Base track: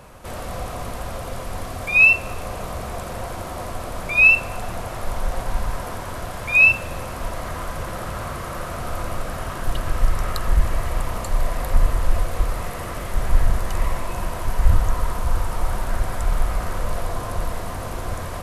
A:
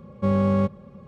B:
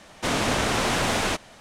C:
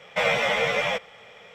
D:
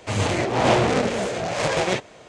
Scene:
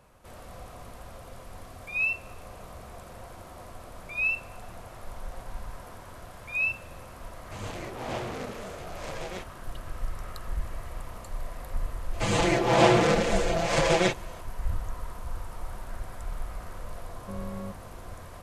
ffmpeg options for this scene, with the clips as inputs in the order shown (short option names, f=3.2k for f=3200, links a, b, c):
-filter_complex "[4:a]asplit=2[a][b];[0:a]volume=-14.5dB[c];[b]aecho=1:1:5.9:0.92[d];[a]atrim=end=2.28,asetpts=PTS-STARTPTS,volume=-16dB,afade=t=in:d=0.004:c=hsin,afade=t=out:st=2.276:d=0.004:c=hsin,adelay=7440[e];[d]atrim=end=2.28,asetpts=PTS-STARTPTS,volume=-4dB,afade=t=in:d=0.004:c=hsin,afade=t=out:st=2.276:d=0.004:c=hsin,adelay=12130[f];[1:a]atrim=end=1.07,asetpts=PTS-STARTPTS,volume=-17dB,afade=t=in:d=0.004:c=hsin,afade=t=out:st=1.066:d=0.004:c=hsin,adelay=17050[g];[c][e][f][g]amix=inputs=4:normalize=0"